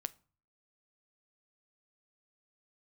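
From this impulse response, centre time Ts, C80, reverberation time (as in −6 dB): 2 ms, 28.5 dB, 0.40 s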